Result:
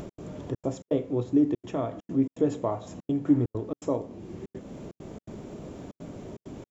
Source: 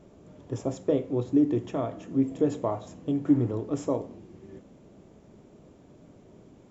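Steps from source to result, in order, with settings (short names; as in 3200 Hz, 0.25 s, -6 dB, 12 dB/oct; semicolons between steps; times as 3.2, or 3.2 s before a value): upward compressor, threshold -28 dBFS; step gate "x.xxxx.xx.xxxxxx" 165 bpm -60 dB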